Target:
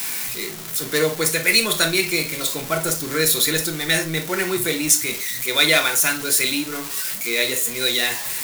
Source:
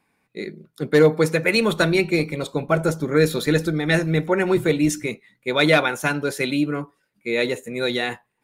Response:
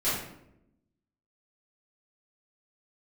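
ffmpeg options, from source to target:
-filter_complex "[0:a]aeval=exprs='val(0)+0.5*0.0398*sgn(val(0))':channel_layout=same,asplit=2[link_01][link_02];[1:a]atrim=start_sample=2205,atrim=end_sample=3087[link_03];[link_02][link_03]afir=irnorm=-1:irlink=0,volume=-13dB[link_04];[link_01][link_04]amix=inputs=2:normalize=0,crystalizer=i=10:c=0,volume=-10.5dB"

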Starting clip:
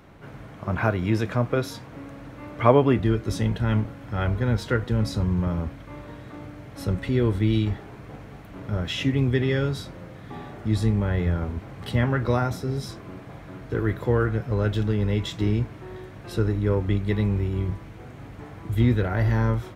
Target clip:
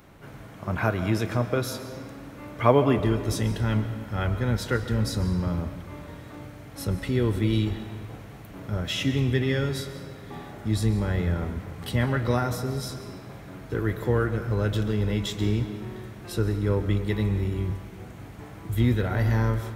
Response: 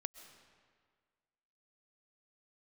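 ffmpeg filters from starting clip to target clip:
-filter_complex "[0:a]crystalizer=i=1.5:c=0[link_01];[1:a]atrim=start_sample=2205[link_02];[link_01][link_02]afir=irnorm=-1:irlink=0,volume=1dB"

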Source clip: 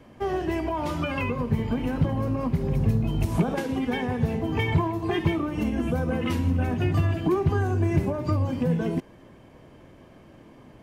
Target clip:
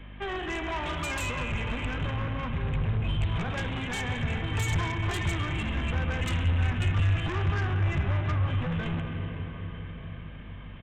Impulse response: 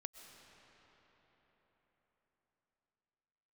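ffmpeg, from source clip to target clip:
-filter_complex "[0:a]bandreject=frequency=60:width_type=h:width=6,bandreject=frequency=120:width_type=h:width=6[link_01];[1:a]atrim=start_sample=2205[link_02];[link_01][link_02]afir=irnorm=-1:irlink=0,aresample=8000,asoftclip=type=tanh:threshold=-30dB,aresample=44100,asubboost=boost=6:cutoff=110,aeval=exprs='val(0)+0.00708*(sin(2*PI*50*n/s)+sin(2*PI*2*50*n/s)/2+sin(2*PI*3*50*n/s)/3+sin(2*PI*4*50*n/s)/4+sin(2*PI*5*50*n/s)/5)':channel_layout=same,acrossover=split=240|1400[link_03][link_04][link_05];[link_05]aeval=exprs='0.0282*sin(PI/2*3.55*val(0)/0.0282)':channel_layout=same[link_06];[link_03][link_04][link_06]amix=inputs=3:normalize=0"

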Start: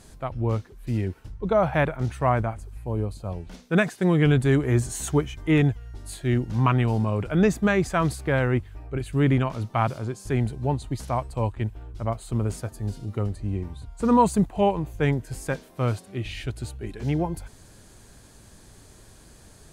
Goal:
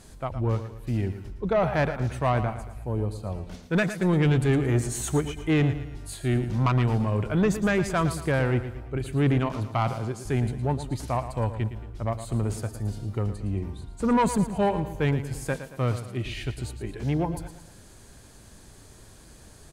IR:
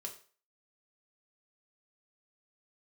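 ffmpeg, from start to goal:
-filter_complex "[0:a]asoftclip=type=tanh:threshold=-16dB,asplit=2[link_01][link_02];[link_02]aecho=0:1:113|226|339|452:0.266|0.117|0.0515|0.0227[link_03];[link_01][link_03]amix=inputs=2:normalize=0"

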